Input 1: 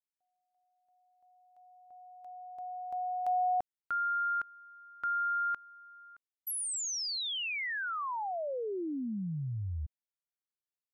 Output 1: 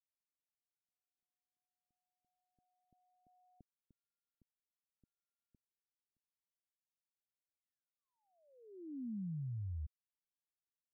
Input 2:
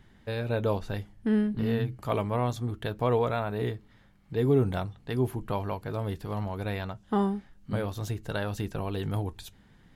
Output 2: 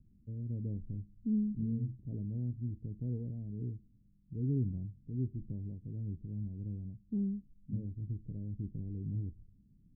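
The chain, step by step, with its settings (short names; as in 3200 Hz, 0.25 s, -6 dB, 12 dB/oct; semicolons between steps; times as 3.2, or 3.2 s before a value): inverse Chebyshev low-pass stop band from 1200 Hz, stop band 70 dB; gain -5.5 dB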